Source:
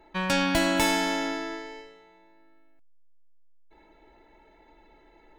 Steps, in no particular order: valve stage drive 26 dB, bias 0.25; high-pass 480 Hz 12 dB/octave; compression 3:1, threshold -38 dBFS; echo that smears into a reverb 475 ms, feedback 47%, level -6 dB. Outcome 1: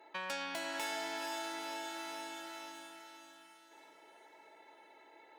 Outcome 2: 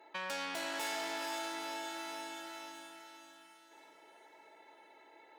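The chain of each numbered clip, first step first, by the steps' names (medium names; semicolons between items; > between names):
echo that smears into a reverb > compression > valve stage > high-pass; echo that smears into a reverb > valve stage > compression > high-pass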